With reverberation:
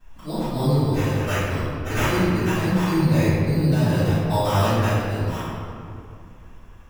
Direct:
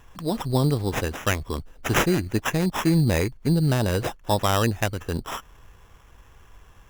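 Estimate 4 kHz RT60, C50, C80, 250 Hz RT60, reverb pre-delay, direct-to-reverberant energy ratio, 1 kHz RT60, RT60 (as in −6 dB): 1.4 s, −4.5 dB, −2.0 dB, 3.3 s, 4 ms, −20.5 dB, 2.3 s, 2.4 s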